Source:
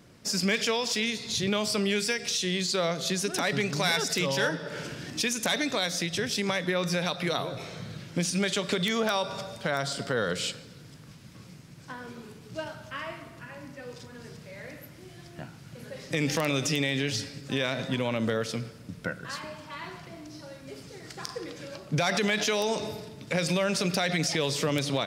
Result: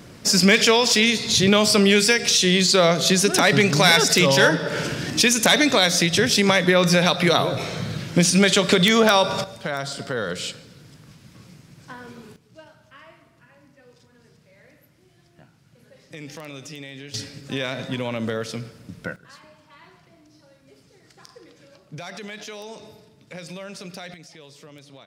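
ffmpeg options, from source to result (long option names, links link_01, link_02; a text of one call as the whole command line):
ffmpeg -i in.wav -af "asetnsamples=nb_out_samples=441:pad=0,asendcmd='9.44 volume volume 1.5dB;12.36 volume volume -10.5dB;17.14 volume volume 1.5dB;19.16 volume volume -10dB;24.14 volume volume -18dB',volume=11dB" out.wav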